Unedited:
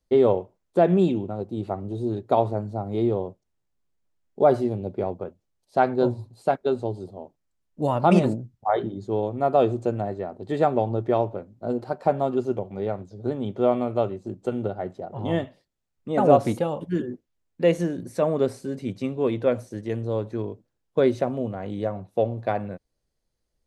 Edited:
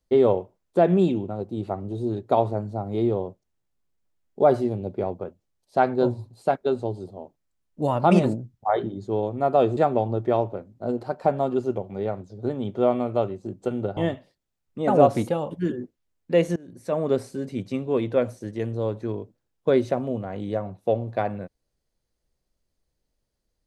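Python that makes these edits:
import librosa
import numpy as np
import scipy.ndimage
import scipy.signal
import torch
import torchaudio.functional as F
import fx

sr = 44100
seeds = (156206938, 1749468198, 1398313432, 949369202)

y = fx.edit(x, sr, fx.cut(start_s=9.77, length_s=0.81),
    fx.cut(start_s=14.78, length_s=0.49),
    fx.fade_in_from(start_s=17.86, length_s=0.55, floor_db=-23.0), tone=tone)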